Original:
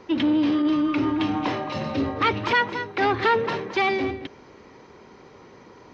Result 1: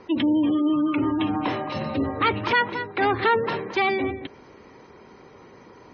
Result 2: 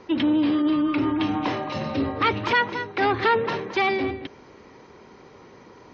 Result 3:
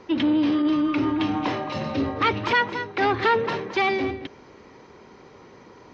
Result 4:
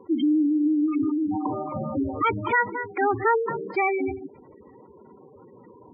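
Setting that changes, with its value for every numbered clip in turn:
spectral gate, under each frame's peak: -30, -45, -60, -10 dB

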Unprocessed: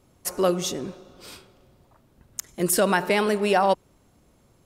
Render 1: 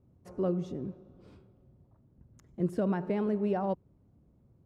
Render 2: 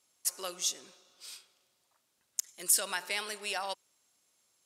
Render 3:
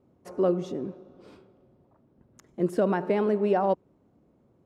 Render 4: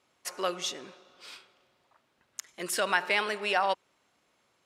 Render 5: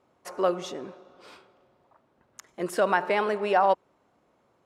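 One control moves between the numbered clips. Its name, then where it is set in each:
band-pass, frequency: 110, 7300, 290, 2400, 930 Hz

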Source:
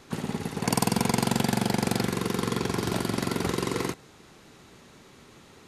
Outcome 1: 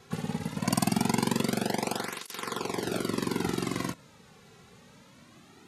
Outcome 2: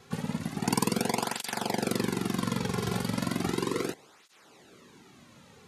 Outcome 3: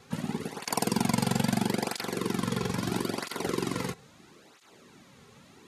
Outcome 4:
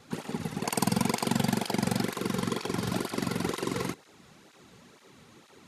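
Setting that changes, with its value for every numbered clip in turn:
tape flanging out of phase, nulls at: 0.22, 0.35, 0.76, 2.1 Hz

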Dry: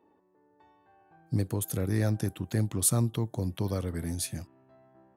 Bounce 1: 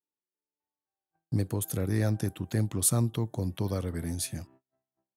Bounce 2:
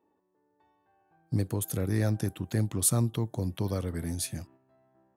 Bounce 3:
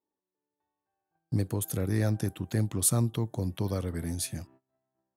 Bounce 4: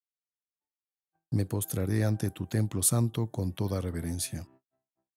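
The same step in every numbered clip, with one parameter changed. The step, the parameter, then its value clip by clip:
gate, range: -36, -7, -24, -56 dB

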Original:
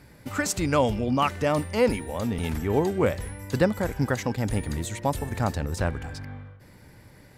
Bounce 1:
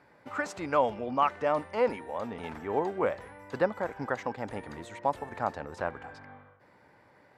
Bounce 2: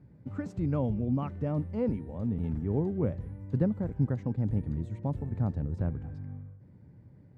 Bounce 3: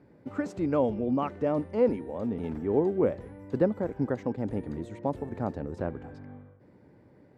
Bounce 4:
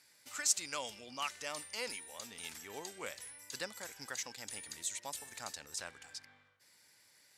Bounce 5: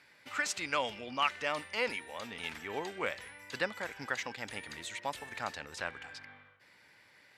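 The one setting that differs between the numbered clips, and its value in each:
band-pass, frequency: 920, 140, 350, 6700, 2600 Hz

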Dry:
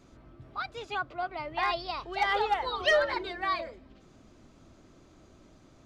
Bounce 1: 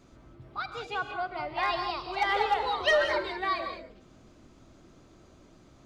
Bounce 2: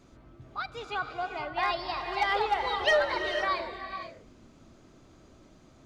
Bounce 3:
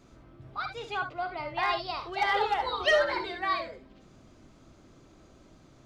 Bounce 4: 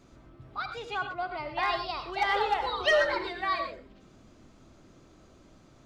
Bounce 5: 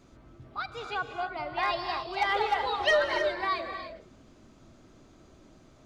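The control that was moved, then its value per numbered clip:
non-linear reverb, gate: 220, 530, 90, 140, 330 ms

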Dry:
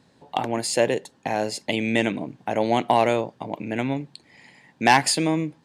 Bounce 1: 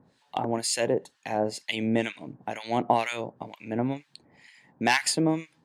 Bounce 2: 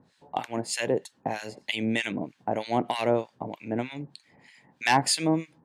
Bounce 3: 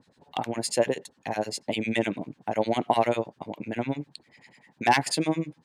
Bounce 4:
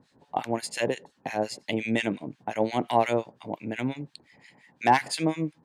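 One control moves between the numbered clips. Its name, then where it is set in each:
harmonic tremolo, rate: 2.1, 3.2, 10, 5.7 Hz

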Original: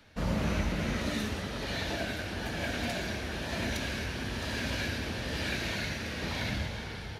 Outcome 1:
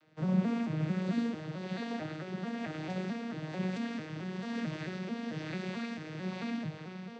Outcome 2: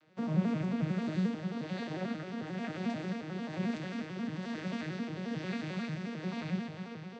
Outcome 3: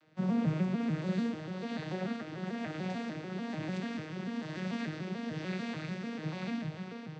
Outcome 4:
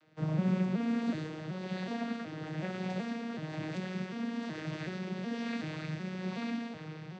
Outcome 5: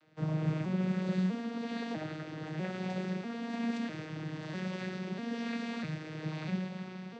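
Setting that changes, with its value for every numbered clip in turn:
arpeggiated vocoder, a note every: 221, 89, 147, 374, 647 ms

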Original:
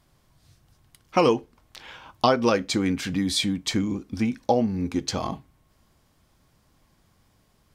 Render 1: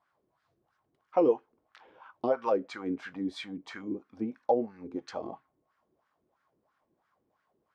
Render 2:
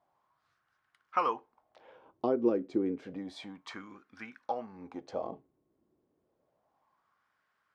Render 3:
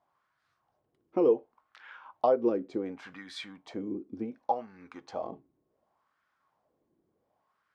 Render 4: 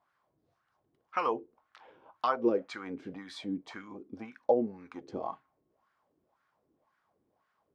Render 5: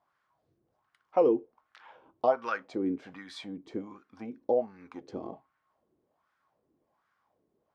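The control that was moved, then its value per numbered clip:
wah, rate: 3, 0.3, 0.68, 1.9, 1.3 Hz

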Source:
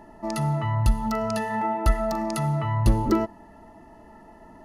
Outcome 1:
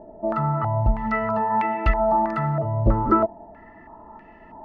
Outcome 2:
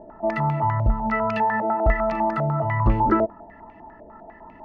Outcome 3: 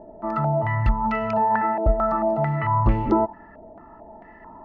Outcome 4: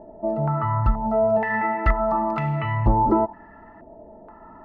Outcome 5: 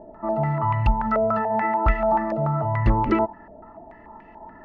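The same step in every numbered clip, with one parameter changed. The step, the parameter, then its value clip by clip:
stepped low-pass, rate: 3.1, 10, 4.5, 2.1, 6.9 Hz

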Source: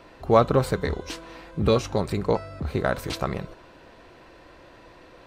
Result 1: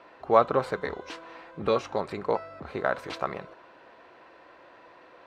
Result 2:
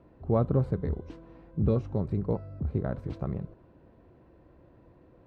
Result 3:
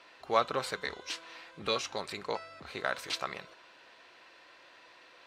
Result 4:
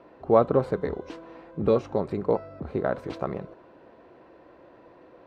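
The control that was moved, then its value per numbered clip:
band-pass, frequency: 1100, 110, 3400, 420 Hz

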